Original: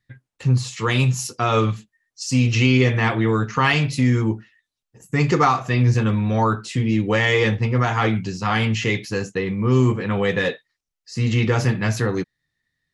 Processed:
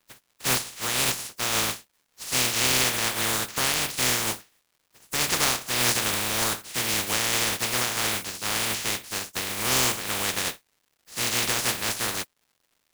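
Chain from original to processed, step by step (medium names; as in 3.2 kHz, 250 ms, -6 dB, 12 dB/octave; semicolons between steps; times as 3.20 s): spectral contrast reduction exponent 0.15; crackle 310 per s -47 dBFS; trim -6.5 dB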